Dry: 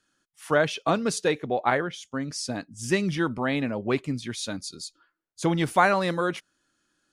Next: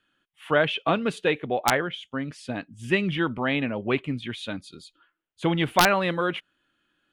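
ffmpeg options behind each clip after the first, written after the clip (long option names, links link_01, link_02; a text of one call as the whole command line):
ffmpeg -i in.wav -af "highshelf=frequency=4100:width_type=q:width=3:gain=-10.5,aeval=exprs='(mod(2.37*val(0)+1,2)-1)/2.37':channel_layout=same" out.wav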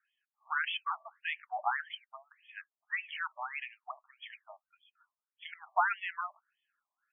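ffmpeg -i in.wav -af "afftfilt=real='re*between(b*sr/1024,830*pow(2500/830,0.5+0.5*sin(2*PI*1.7*pts/sr))/1.41,830*pow(2500/830,0.5+0.5*sin(2*PI*1.7*pts/sr))*1.41)':imag='im*between(b*sr/1024,830*pow(2500/830,0.5+0.5*sin(2*PI*1.7*pts/sr))/1.41,830*pow(2500/830,0.5+0.5*sin(2*PI*1.7*pts/sr))*1.41)':win_size=1024:overlap=0.75,volume=-6.5dB" out.wav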